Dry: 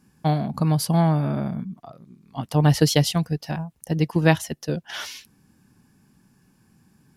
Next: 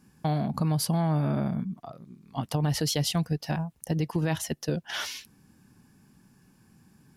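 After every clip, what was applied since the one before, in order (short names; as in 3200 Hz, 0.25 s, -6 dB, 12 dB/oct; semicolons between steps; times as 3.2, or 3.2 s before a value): limiter -15.5 dBFS, peak gain reduction 11 dB; compressor 2:1, threshold -25 dBFS, peak gain reduction 3.5 dB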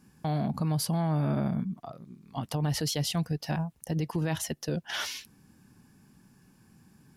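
limiter -21.5 dBFS, peak gain reduction 5.5 dB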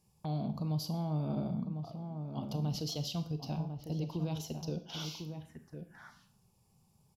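outdoor echo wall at 180 m, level -7 dB; envelope phaser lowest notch 240 Hz, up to 1800 Hz, full sweep at -32 dBFS; Schroeder reverb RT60 0.53 s, combs from 26 ms, DRR 9.5 dB; gain -6.5 dB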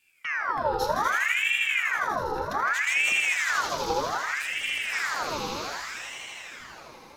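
on a send: swelling echo 81 ms, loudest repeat 5, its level -4.5 dB; on the sum: ring modulator with a swept carrier 1600 Hz, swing 60%, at 0.64 Hz; gain +7.5 dB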